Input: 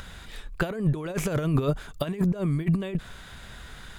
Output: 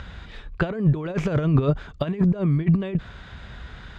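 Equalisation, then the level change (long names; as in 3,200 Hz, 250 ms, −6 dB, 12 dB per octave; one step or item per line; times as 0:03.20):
high-pass filter 55 Hz 12 dB per octave
high-frequency loss of the air 170 metres
low-shelf EQ 81 Hz +10.5 dB
+3.0 dB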